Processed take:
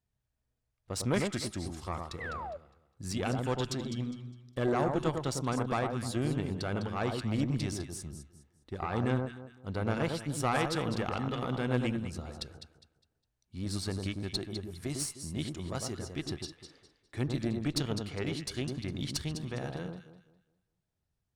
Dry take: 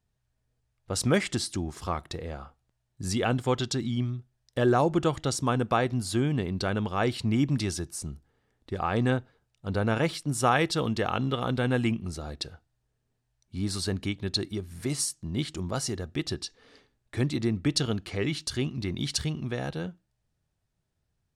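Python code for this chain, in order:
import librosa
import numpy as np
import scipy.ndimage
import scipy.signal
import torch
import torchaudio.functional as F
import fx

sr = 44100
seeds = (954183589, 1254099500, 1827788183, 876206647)

y = fx.echo_alternate(x, sr, ms=102, hz=1300.0, feedback_pct=53, wet_db=-4)
y = fx.spec_paint(y, sr, seeds[0], shape='fall', start_s=2.2, length_s=0.37, low_hz=540.0, high_hz=2100.0, level_db=-33.0)
y = fx.tube_stage(y, sr, drive_db=16.0, bias=0.65)
y = y * 10.0 ** (-3.5 / 20.0)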